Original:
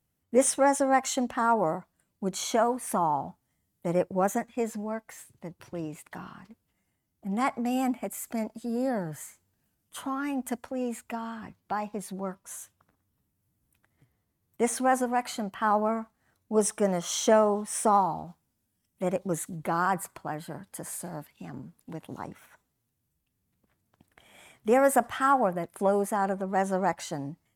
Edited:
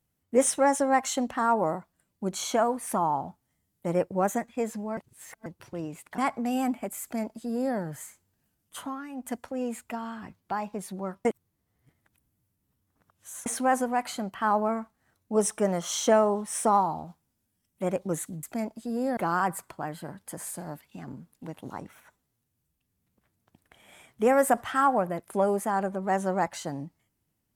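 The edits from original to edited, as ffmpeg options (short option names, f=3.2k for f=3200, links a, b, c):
-filter_complex "[0:a]asplit=10[a][b][c][d][e][f][g][h][i][j];[a]atrim=end=4.972[k];[b]atrim=start=4.968:end=5.462,asetpts=PTS-STARTPTS,areverse[l];[c]atrim=start=5.458:end=6.182[m];[d]atrim=start=7.378:end=10.28,asetpts=PTS-STARTPTS,afade=t=out:st=2.612:d=0.29:silence=0.281838[n];[e]atrim=start=10.28:end=10.29,asetpts=PTS-STARTPTS,volume=-11dB[o];[f]atrim=start=10.29:end=12.452,asetpts=PTS-STARTPTS,afade=t=in:d=0.29:silence=0.281838[p];[g]atrim=start=12.448:end=14.662,asetpts=PTS-STARTPTS,areverse[q];[h]atrim=start=14.658:end=19.632[r];[i]atrim=start=8.218:end=8.962[s];[j]atrim=start=19.628[t];[k][l]acrossfade=d=0.004:c1=hsin:c2=hsin[u];[u][m]acrossfade=d=0.004:c1=hsin:c2=hsin[v];[n][o][p]concat=n=3:v=0:a=1[w];[v][w]acrossfade=d=0.004:c1=hsin:c2=hsin[x];[x][q]acrossfade=d=0.004:c1=hsin:c2=hsin[y];[y][r]acrossfade=d=0.004:c1=hsin:c2=hsin[z];[z][s]acrossfade=d=0.004:c1=hsin:c2=hsin[aa];[aa][t]acrossfade=d=0.004:c1=hsin:c2=hsin"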